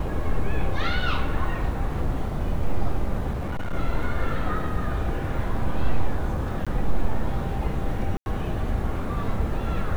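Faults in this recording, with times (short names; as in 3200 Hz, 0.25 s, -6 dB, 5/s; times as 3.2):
3.32–3.74 clipped -24 dBFS
6.65–6.67 gap 16 ms
8.17–8.26 gap 91 ms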